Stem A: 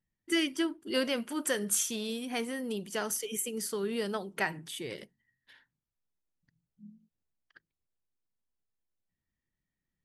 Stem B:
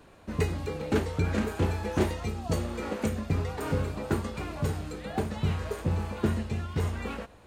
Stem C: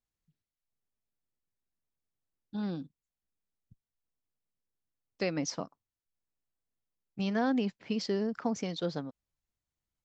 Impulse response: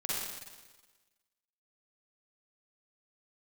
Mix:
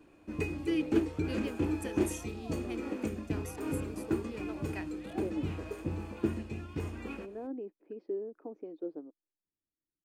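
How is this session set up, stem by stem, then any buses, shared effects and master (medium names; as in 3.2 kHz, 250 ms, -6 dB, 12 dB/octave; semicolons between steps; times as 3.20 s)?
-14.0 dB, 0.35 s, no send, local Wiener filter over 15 samples
-10.0 dB, 0.00 s, no send, band-stop 3.9 kHz, Q 14
-3.0 dB, 0.00 s, no send, ladder band-pass 460 Hz, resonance 50%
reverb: none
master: small resonant body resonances 310/2500 Hz, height 15 dB, ringing for 50 ms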